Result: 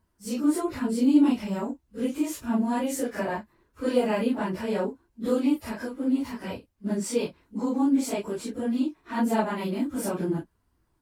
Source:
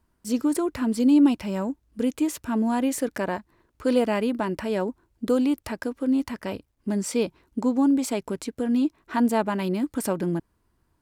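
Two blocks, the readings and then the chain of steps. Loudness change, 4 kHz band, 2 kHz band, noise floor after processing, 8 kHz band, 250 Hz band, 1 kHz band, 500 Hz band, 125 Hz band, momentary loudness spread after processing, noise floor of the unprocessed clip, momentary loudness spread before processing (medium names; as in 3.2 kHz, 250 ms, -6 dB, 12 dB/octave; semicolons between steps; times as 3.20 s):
-2.0 dB, -2.0 dB, -2.0 dB, -71 dBFS, -2.0 dB, -2.0 dB, -1.5 dB, -2.0 dB, -2.0 dB, 10 LU, -71 dBFS, 10 LU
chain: phase randomisation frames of 100 ms; trim -2 dB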